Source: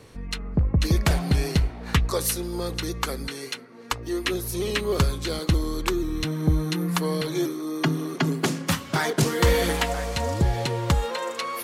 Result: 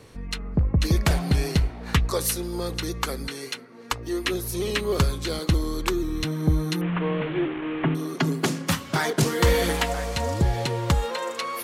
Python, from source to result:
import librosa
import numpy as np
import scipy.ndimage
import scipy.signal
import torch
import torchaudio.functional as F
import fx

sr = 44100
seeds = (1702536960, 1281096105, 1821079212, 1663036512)

y = fx.delta_mod(x, sr, bps=16000, step_db=-28.0, at=(6.81, 7.95))